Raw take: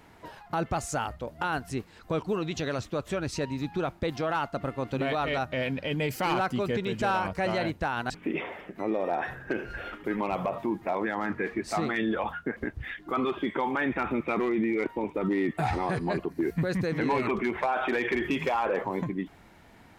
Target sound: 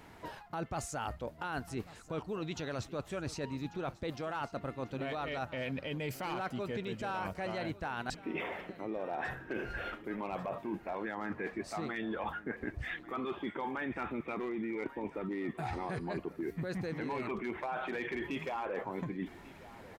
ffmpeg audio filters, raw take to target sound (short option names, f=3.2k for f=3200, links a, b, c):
-af "areverse,acompressor=threshold=-35dB:ratio=6,areverse,aecho=1:1:1143|2286|3429|4572:0.126|0.0541|0.0233|0.01"